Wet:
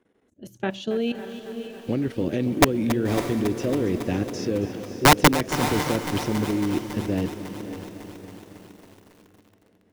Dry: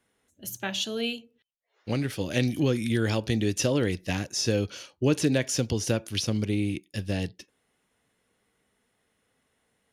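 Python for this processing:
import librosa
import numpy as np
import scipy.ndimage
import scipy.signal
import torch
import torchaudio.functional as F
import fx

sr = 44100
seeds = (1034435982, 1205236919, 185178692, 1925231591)

y = fx.lowpass(x, sr, hz=1900.0, slope=6)
y = fx.peak_eq(y, sr, hz=330.0, db=10.0, octaves=1.7)
y = fx.level_steps(y, sr, step_db=14)
y = (np.mod(10.0 ** (11.0 / 20.0) * y + 1.0, 2.0) - 1.0) / 10.0 ** (11.0 / 20.0)
y = fx.echo_diffused(y, sr, ms=580, feedback_pct=41, wet_db=-11.0)
y = fx.echo_crushed(y, sr, ms=276, feedback_pct=80, bits=8, wet_db=-13.0)
y = F.gain(torch.from_numpy(y), 4.0).numpy()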